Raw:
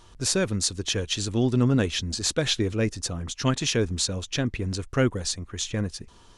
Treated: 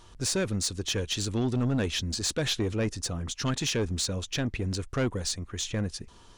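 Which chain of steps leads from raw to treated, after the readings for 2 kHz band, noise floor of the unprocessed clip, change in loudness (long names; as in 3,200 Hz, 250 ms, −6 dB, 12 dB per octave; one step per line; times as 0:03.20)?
−3.5 dB, −52 dBFS, −3.5 dB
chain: in parallel at −2.5 dB: brickwall limiter −17.5 dBFS, peak gain reduction 7 dB
on the sum: soft clipping −15.5 dBFS, distortion −14 dB
level −5.5 dB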